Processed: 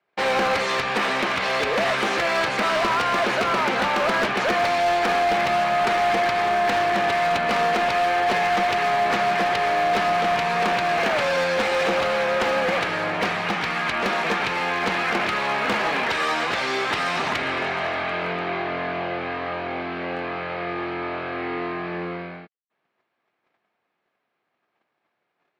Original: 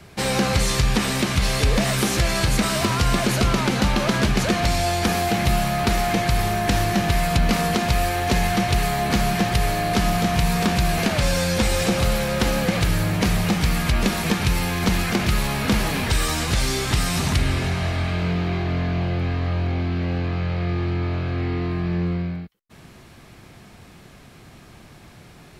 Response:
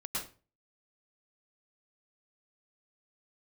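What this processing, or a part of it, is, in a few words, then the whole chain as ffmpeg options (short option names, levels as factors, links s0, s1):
walkie-talkie: -filter_complex "[0:a]asettb=1/sr,asplit=3[s0][s1][s2];[s0]atrim=end=13.324[s3];[s1]atrim=start=13.32:end=14.01,asetpts=PTS-STARTPTS,afade=t=in:d=0.004:c=qsin,afade=t=out:st=0.686:d=0.004:c=qsin,equalizer=f=530:t=o:w=0.88:g=-4.5[s4];[s2]atrim=start=14.006[s5];[s3][s4]acrossfade=d=0.004:c1=hsin:c2=qsin[s6];[s6][s5]acrossfade=d=0.004:c1=qsin:c2=hsin,highpass=510,lowpass=2400,asoftclip=type=hard:threshold=0.0668,agate=range=0.0316:threshold=0.00398:ratio=16:detection=peak,volume=2.11"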